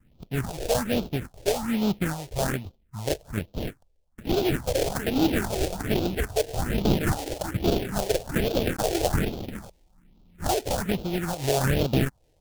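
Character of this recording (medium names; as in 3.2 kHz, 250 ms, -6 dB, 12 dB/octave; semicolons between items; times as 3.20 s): aliases and images of a low sample rate 1.1 kHz, jitter 20%; phasing stages 4, 1.2 Hz, lowest notch 200–1800 Hz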